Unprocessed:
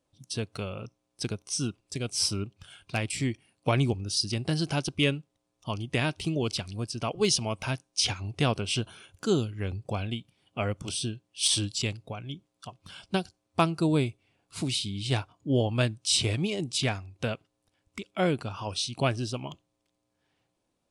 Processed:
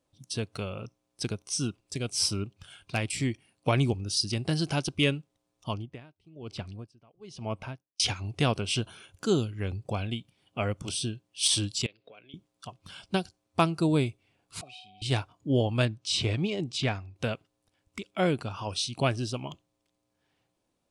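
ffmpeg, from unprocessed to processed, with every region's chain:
ffmpeg -i in.wav -filter_complex "[0:a]asettb=1/sr,asplit=3[link_01][link_02][link_03];[link_01]atrim=end=5.734[link_04];[link_02]atrim=start=5.73:end=8,asetpts=PTS-STARTPTS,afade=type=in:duration=0.004:curve=qsin,afade=type=out:start_time=2.266:duration=0.004:curve=qsin,lowpass=frequency=1500:poles=1,aeval=exprs='val(0)*pow(10,-29*(0.5-0.5*cos(2*PI*1.1*n/s))/20)':channel_layout=same[link_05];[link_03]atrim=start=7.996[link_06];[link_04][link_05]acrossfade=duration=0.004:curve1=hsin:curve2=qsin[link_07];[link_07][link_06]acrossfade=duration=0.004:curve1=qsin:curve2=hsin,asettb=1/sr,asplit=3[link_08][link_09][link_10];[link_08]atrim=end=11.864[link_11];[link_09]atrim=start=11.86:end=12.34,asetpts=PTS-STARTPTS,afade=type=in:duration=0.004:curve=qsin,afade=type=out:start_time=0.476:duration=0.004:curve=qsin,acompressor=threshold=-44dB:ratio=6:attack=3.2:release=140:knee=1:detection=peak,highpass=400,equalizer=frequency=460:width_type=q:width=4:gain=5,equalizer=frequency=850:width_type=q:width=4:gain=-10,equalizer=frequency=1200:width_type=q:width=4:gain=-4,equalizer=frequency=2500:width_type=q:width=4:gain=3,equalizer=frequency=3700:width_type=q:width=4:gain=3,lowpass=frequency=4200:width=0.5412,lowpass=frequency=4200:width=1.3066[link_12];[link_10]atrim=start=12.336[link_13];[link_11][link_12]acrossfade=duration=0.004:curve1=hsin:curve2=qsin[link_14];[link_14][link_13]acrossfade=duration=0.004:curve1=qsin:curve2=hsin,asettb=1/sr,asplit=3[link_15][link_16][link_17];[link_15]atrim=end=14.614[link_18];[link_16]atrim=start=14.61:end=15.02,asetpts=PTS-STARTPTS,afade=type=in:duration=0.004:curve=qsin,afade=type=out:start_time=0.406:duration=0.004:curve=qsin,asplit=3[link_19][link_20][link_21];[link_19]bandpass=frequency=730:width_type=q:width=8,volume=0dB[link_22];[link_20]bandpass=frequency=1090:width_type=q:width=8,volume=-6dB[link_23];[link_21]bandpass=frequency=2440:width_type=q:width=8,volume=-9dB[link_24];[link_22][link_23][link_24]amix=inputs=3:normalize=0,aeval=exprs='val(0)+0.00141*sin(2*PI*740*n/s)':channel_layout=same,aecho=1:1:1.6:0.6,atrim=end_sample=18081[link_25];[link_17]atrim=start=15.016[link_26];[link_18][link_25]acrossfade=duration=0.004:curve1=hsin:curve2=qsin[link_27];[link_27][link_26]acrossfade=duration=0.004:curve1=qsin:curve2=hsin,asettb=1/sr,asplit=3[link_28][link_29][link_30];[link_28]atrim=end=15.854[link_31];[link_29]atrim=start=15.85:end=17.16,asetpts=PTS-STARTPTS,afade=type=in:duration=0.004:curve=qsin,afade=type=out:start_time=1.306:duration=0.004:curve=qsin,lowpass=7200,highshelf=frequency=5200:gain=-7[link_32];[link_30]atrim=start=17.156[link_33];[link_31][link_32]acrossfade=duration=0.004:curve1=hsin:curve2=qsin[link_34];[link_34][link_33]acrossfade=duration=0.004:curve1=qsin:curve2=hsin" out.wav

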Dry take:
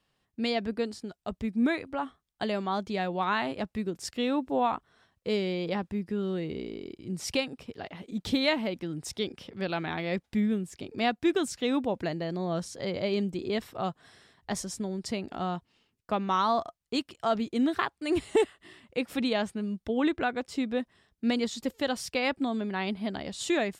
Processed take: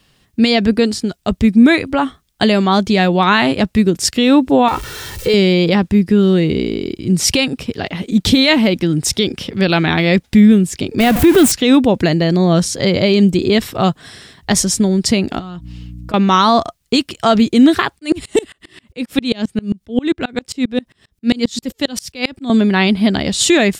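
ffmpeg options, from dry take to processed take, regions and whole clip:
ffmpeg -i in.wav -filter_complex "[0:a]asettb=1/sr,asplit=3[link_01][link_02][link_03];[link_01]atrim=end=4.684[link_04];[link_02]atrim=start=4.68:end=5.34,asetpts=PTS-STARTPTS,afade=type=in:duration=0.004:curve=qsin,afade=type=out:start_time=0.656:duration=0.004:curve=qsin,aeval=exprs='val(0)+0.5*0.00562*sgn(val(0))':channel_layout=same,aecho=1:1:2.2:0.64,atrim=end_sample=29106,acompressor=threshold=-28dB:ratio=6:attack=3.2:release=140:knee=1:detection=peak[link_05];[link_03]atrim=start=5.336[link_06];[link_04][link_05]acrossfade=duration=0.004:curve1=hsin:curve2=qsin[link_07];[link_07][link_06]acrossfade=duration=0.004:curve1=qsin:curve2=hsin,asettb=1/sr,asplit=3[link_08][link_09][link_10];[link_08]atrim=end=11.004[link_11];[link_09]atrim=start=11:end=11.52,asetpts=PTS-STARTPTS,afade=type=in:duration=0.004:curve=qsin,afade=type=out:start_time=0.516:duration=0.004:curve=qsin,aeval=exprs='val(0)+0.5*0.0355*sgn(val(0))':channel_layout=same,equalizer=frequency=5200:width=0.67:gain=-9[link_12];[link_10]atrim=start=11.516[link_13];[link_11][link_12]acrossfade=duration=0.004:curve1=hsin:curve2=qsin[link_14];[link_14][link_13]acrossfade=duration=0.004:curve1=qsin:curve2=hsin,asettb=1/sr,asplit=3[link_15][link_16][link_17];[link_15]atrim=end=15.394[link_18];[link_16]atrim=start=15.39:end=16.14,asetpts=PTS-STARTPTS,afade=type=in:duration=0.004:curve=qsin,afade=type=out:start_time=0.746:duration=0.004:curve=qsin,aeval=exprs='val(0)+0.00316*(sin(2*PI*60*n/s)+sin(2*PI*2*60*n/s)/2+sin(2*PI*3*60*n/s)/3+sin(2*PI*4*60*n/s)/4+sin(2*PI*5*60*n/s)/5)':channel_layout=same,acompressor=threshold=-45dB:ratio=16:attack=3.2:release=140:knee=1:detection=peak,aecho=1:1:6.3:0.4,atrim=end_sample=33075[link_19];[link_17]atrim=start=16.136[link_20];[link_18][link_19]acrossfade=duration=0.004:curve1=hsin:curve2=qsin[link_21];[link_21][link_20]acrossfade=duration=0.004:curve1=qsin:curve2=hsin,asettb=1/sr,asplit=3[link_22][link_23][link_24];[link_22]atrim=end=17.994[link_25];[link_23]atrim=start=17.99:end=22.5,asetpts=PTS-STARTPTS,afade=type=in:duration=0.004:curve=qsin,afade=type=out:start_time=4.506:duration=0.004:curve=qsin,acrossover=split=430|3000[link_26][link_27][link_28];[link_27]acompressor=threshold=-36dB:ratio=2.5:attack=3.2:release=140:knee=2.83:detection=peak[link_29];[link_26][link_29][link_28]amix=inputs=3:normalize=0,aeval=exprs='val(0)*pow(10,-29*if(lt(mod(-7.5*n/s,1),2*abs(-7.5)/1000),1-mod(-7.5*n/s,1)/(2*abs(-7.5)/1000),(mod(-7.5*n/s,1)-2*abs(-7.5)/1000)/(1-2*abs(-7.5)/1000))/20)':channel_layout=same[link_30];[link_24]atrim=start=22.496[link_31];[link_25][link_30]acrossfade=duration=0.004:curve1=hsin:curve2=qsin[link_32];[link_32][link_31]acrossfade=duration=0.004:curve1=qsin:curve2=hsin,equalizer=frequency=820:width_type=o:width=2.3:gain=-7.5,alimiter=level_in=23dB:limit=-1dB:release=50:level=0:latency=1,volume=-1dB" out.wav

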